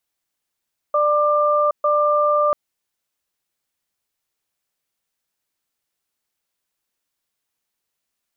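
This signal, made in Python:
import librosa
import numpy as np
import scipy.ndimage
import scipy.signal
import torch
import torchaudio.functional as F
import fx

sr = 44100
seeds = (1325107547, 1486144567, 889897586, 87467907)

y = fx.cadence(sr, length_s=1.59, low_hz=593.0, high_hz=1190.0, on_s=0.77, off_s=0.13, level_db=-17.0)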